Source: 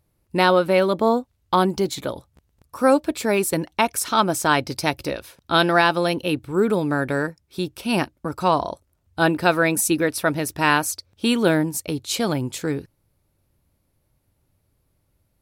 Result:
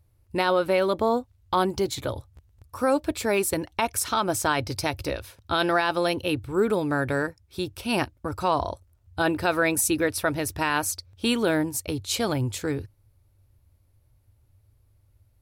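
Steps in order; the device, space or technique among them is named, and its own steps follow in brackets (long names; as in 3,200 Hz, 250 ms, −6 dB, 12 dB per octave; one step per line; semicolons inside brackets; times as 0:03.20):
car stereo with a boomy subwoofer (low shelf with overshoot 130 Hz +7 dB, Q 3; brickwall limiter −10 dBFS, peak gain reduction 6.5 dB)
level −2 dB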